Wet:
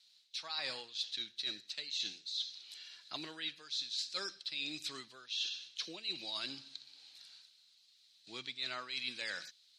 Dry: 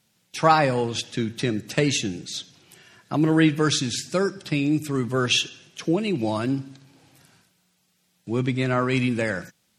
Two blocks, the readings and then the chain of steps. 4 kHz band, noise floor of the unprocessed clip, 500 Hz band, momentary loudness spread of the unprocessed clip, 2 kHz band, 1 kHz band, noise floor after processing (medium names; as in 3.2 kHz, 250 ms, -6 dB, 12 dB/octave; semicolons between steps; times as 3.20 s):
-7.5 dB, -68 dBFS, -28.0 dB, 12 LU, -15.5 dB, -25.5 dB, -67 dBFS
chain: band-pass filter 4.1 kHz, Q 5.9; reverse; compression 20:1, threshold -48 dBFS, peak gain reduction 23.5 dB; reverse; trim +12 dB